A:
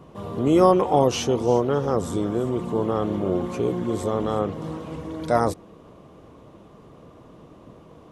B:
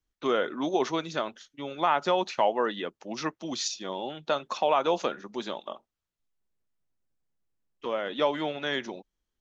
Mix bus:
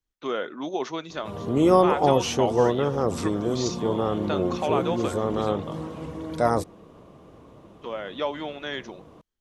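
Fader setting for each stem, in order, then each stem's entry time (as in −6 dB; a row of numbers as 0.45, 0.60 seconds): −1.5, −2.5 decibels; 1.10, 0.00 seconds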